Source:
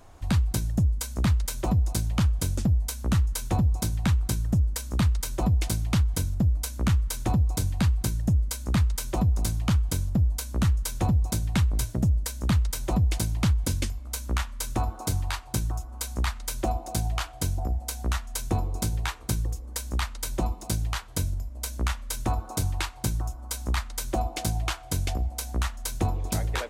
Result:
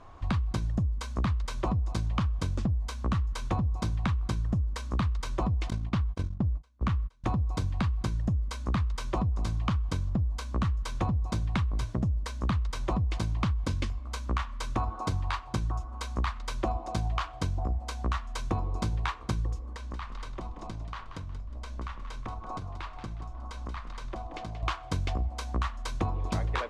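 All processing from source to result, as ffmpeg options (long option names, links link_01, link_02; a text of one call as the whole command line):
ffmpeg -i in.wav -filter_complex "[0:a]asettb=1/sr,asplit=3[link_01][link_02][link_03];[link_01]atrim=end=5.704[link_04];[link_02]atrim=start=5.7:end=7.24,asetpts=PTS-STARTPTS,afade=type=in:duration=0.004:curve=qsin,afade=type=out:start_time=1.536:duration=0.004:curve=qsin,highshelf=frequency=5600:gain=-6.5,agate=range=-30dB:threshold=-27dB:ratio=16:release=100:detection=peak[link_05];[link_03]atrim=start=7.236[link_06];[link_04][link_05]acrossfade=duration=0.004:curve1=hsin:curve2=qsin[link_07];[link_07][link_06]acrossfade=duration=0.004:curve1=qsin:curve2=hsin,asettb=1/sr,asplit=3[link_08][link_09][link_10];[link_08]atrim=end=19.734[link_11];[link_09]atrim=start=19.73:end=24.63,asetpts=PTS-STARTPTS,afade=type=in:duration=0.004:curve=qsin,afade=type=out:start_time=4.896:duration=0.004:curve=qsin,highshelf=frequency=6500:gain=-10,acompressor=threshold=-35dB:ratio=6:attack=3.2:release=140:knee=1:detection=peak,asplit=5[link_12][link_13][link_14][link_15][link_16];[link_13]adelay=181,afreqshift=-53,volume=-10dB[link_17];[link_14]adelay=362,afreqshift=-106,volume=-19.1dB[link_18];[link_15]adelay=543,afreqshift=-159,volume=-28.2dB[link_19];[link_16]adelay=724,afreqshift=-212,volume=-37.4dB[link_20];[link_12][link_17][link_18][link_19][link_20]amix=inputs=5:normalize=0,atrim=end_sample=216090[link_21];[link_10]atrim=start=24.626[link_22];[link_11][link_21]acrossfade=duration=0.004:curve1=hsin:curve2=qsin[link_23];[link_23][link_22]acrossfade=duration=0.004:curve1=qsin:curve2=hsin,lowpass=3900,equalizer=frequency=1100:width_type=o:width=0.28:gain=10.5,acompressor=threshold=-25dB:ratio=6" out.wav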